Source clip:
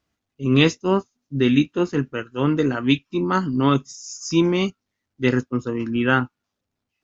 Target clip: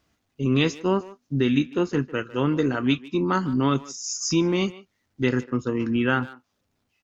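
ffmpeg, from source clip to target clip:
-filter_complex "[0:a]acompressor=threshold=-34dB:ratio=2,asplit=2[a][b];[b]adelay=150,highpass=300,lowpass=3.4k,asoftclip=type=hard:threshold=-24.5dB,volume=-17dB[c];[a][c]amix=inputs=2:normalize=0,volume=7dB"

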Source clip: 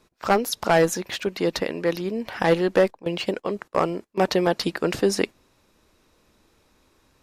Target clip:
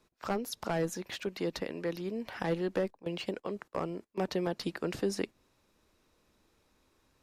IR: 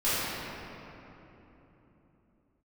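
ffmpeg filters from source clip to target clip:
-filter_complex "[0:a]acrossover=split=350[a][b];[b]acompressor=threshold=-29dB:ratio=2[c];[a][c]amix=inputs=2:normalize=0,volume=-8.5dB"

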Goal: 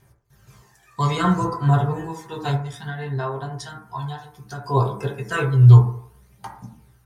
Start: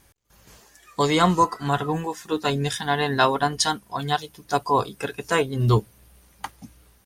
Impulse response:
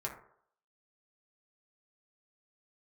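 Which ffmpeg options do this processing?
-filter_complex "[0:a]equalizer=f=120:w=1.6:g=7,asettb=1/sr,asplit=3[a][b][c];[a]atrim=end=2.554[d];[b]atrim=start=2.55:end=4.64,asetpts=PTS-STARTPTS,afade=t=in:d=0.004:c=qsin,afade=t=out:st=2.086:d=0.004:c=qsin,acompressor=threshold=-28dB:ratio=6[e];[c]atrim=start=4.636[f];[d][e]acrossfade=d=0.004:c1=hsin:c2=qsin[g];[g][f]acrossfade=d=0.004:c1=qsin:c2=hsin,aphaser=in_gain=1:out_gain=1:delay=1.3:decay=0.44:speed=0.61:type=triangular[h];[1:a]atrim=start_sample=2205[i];[h][i]afir=irnorm=-1:irlink=0,volume=-4.5dB"

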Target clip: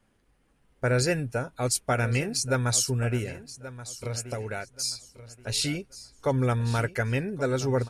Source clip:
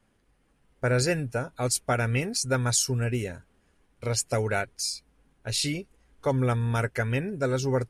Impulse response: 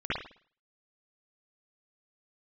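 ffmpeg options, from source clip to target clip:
-filter_complex "[0:a]asettb=1/sr,asplit=3[a][b][c];[a]atrim=end=3.224[d];[b]atrim=start=3.22:end=4.74,asetpts=PTS-STARTPTS,afade=t=in:d=0.004:c=qsin,afade=t=out:st=1.516:d=0.004:c=qsin,acompressor=threshold=-31dB:ratio=4[e];[c]atrim=start=4.736[f];[d][e]acrossfade=d=0.004:c1=hsin:c2=qsin[g];[g][f]acrossfade=d=0.004:c1=qsin:c2=hsin,aecho=1:1:1129|2258|3387:0.178|0.0445|0.0111"

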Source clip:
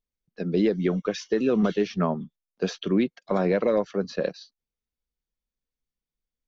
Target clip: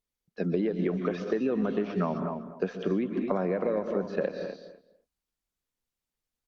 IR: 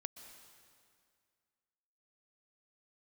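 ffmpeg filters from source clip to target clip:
-filter_complex "[0:a]asplit=3[a][b][c];[a]afade=t=out:st=2.01:d=0.02[d];[b]equalizer=f=4k:w=1.2:g=-7,afade=t=in:st=2.01:d=0.02,afade=t=out:st=4.13:d=0.02[e];[c]afade=t=in:st=4.13:d=0.02[f];[d][e][f]amix=inputs=3:normalize=0[g];[1:a]atrim=start_sample=2205,afade=t=out:st=0.31:d=0.01,atrim=end_sample=14112[h];[g][h]afir=irnorm=-1:irlink=0,acrossover=split=2700[i][j];[j]acompressor=threshold=-59dB:ratio=4:attack=1:release=60[k];[i][k]amix=inputs=2:normalize=0,lowshelf=f=110:g=-6.5,asplit=2[l][m];[m]adelay=249,lowpass=f=1.6k:p=1,volume=-11.5dB,asplit=2[n][o];[o]adelay=249,lowpass=f=1.6k:p=1,volume=0.17[p];[l][n][p]amix=inputs=3:normalize=0,acompressor=threshold=-30dB:ratio=16,volume=6.5dB" -ar 48000 -c:a libopus -b:a 48k

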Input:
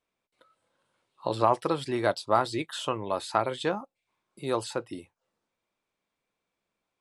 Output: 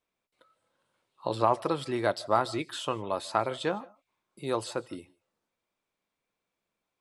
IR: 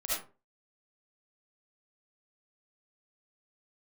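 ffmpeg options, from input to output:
-filter_complex "[0:a]asplit=2[a][b];[1:a]atrim=start_sample=2205,atrim=end_sample=3969,adelay=83[c];[b][c]afir=irnorm=-1:irlink=0,volume=-25.5dB[d];[a][d]amix=inputs=2:normalize=0,volume=-1.5dB"

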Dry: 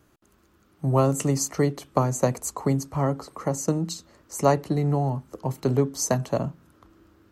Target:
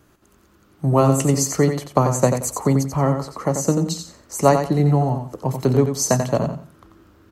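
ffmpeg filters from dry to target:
-af "aecho=1:1:89|178|267:0.447|0.107|0.0257,volume=5dB"

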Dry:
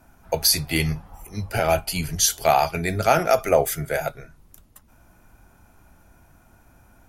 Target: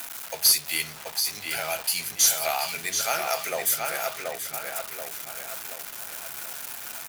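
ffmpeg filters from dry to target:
-filter_complex "[0:a]aeval=exprs='val(0)+0.5*0.0473*sgn(val(0))':c=same,aderivative,asplit=2[a][b];[b]adelay=730,lowpass=f=3.6k:p=1,volume=-3dB,asplit=2[c][d];[d]adelay=730,lowpass=f=3.6k:p=1,volume=0.48,asplit=2[e][f];[f]adelay=730,lowpass=f=3.6k:p=1,volume=0.48,asplit=2[g][h];[h]adelay=730,lowpass=f=3.6k:p=1,volume=0.48,asplit=2[i][j];[j]adelay=730,lowpass=f=3.6k:p=1,volume=0.48,asplit=2[k][l];[l]adelay=730,lowpass=f=3.6k:p=1,volume=0.48[m];[c][e][g][i][k][m]amix=inputs=6:normalize=0[n];[a][n]amix=inputs=2:normalize=0,acontrast=86,highshelf=f=4.4k:g=-9"

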